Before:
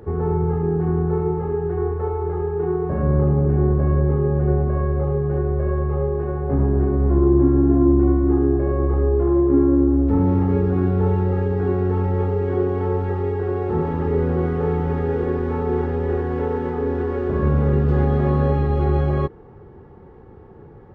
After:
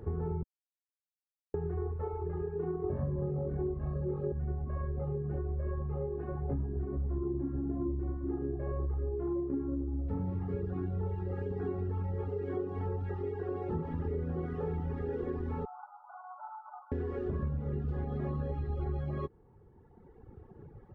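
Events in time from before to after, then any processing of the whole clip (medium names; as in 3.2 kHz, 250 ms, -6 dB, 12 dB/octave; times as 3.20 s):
0.43–1.54 s: mute
2.82–4.32 s: flutter echo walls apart 3.7 m, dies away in 0.88 s
15.65–16.92 s: brick-wall FIR band-pass 590–1500 Hz
whole clip: reverb removal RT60 1.8 s; bass shelf 220 Hz +7.5 dB; compression, threshold -22 dBFS; trim -9 dB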